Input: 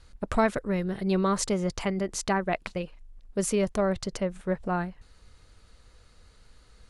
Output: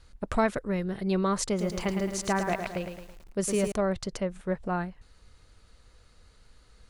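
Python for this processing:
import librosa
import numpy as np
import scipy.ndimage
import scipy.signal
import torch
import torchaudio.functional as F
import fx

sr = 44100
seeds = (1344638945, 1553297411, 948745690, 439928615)

y = fx.echo_crushed(x, sr, ms=109, feedback_pct=55, bits=8, wet_db=-6.5, at=(1.46, 3.72))
y = F.gain(torch.from_numpy(y), -1.5).numpy()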